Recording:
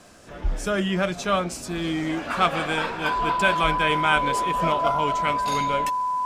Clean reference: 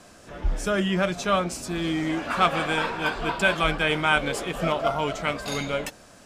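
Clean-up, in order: de-click; notch 1000 Hz, Q 30

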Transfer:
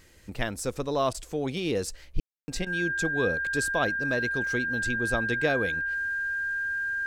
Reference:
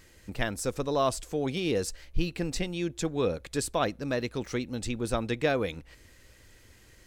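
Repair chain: notch 1600 Hz, Q 30; room tone fill 2.2–2.48; interpolate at 1.13/2.65, 13 ms

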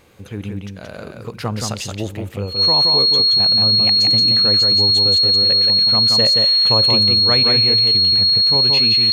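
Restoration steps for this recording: de-click; notch 4300 Hz, Q 30; inverse comb 0.175 s -4 dB

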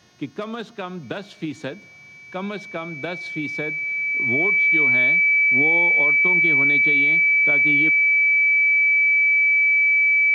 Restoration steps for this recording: de-hum 360.9 Hz, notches 18; notch 2300 Hz, Q 30

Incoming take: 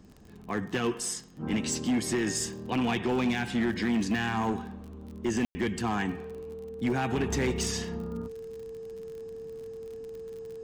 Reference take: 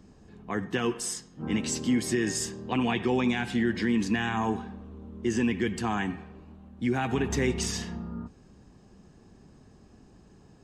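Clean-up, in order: clip repair -22.5 dBFS; de-click; notch 450 Hz, Q 30; room tone fill 5.45–5.55

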